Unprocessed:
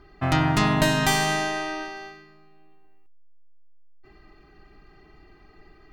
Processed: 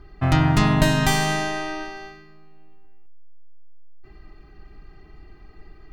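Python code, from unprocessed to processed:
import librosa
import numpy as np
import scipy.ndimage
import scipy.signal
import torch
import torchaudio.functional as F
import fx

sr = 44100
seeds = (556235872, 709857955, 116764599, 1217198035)

y = fx.low_shelf(x, sr, hz=140.0, db=10.5)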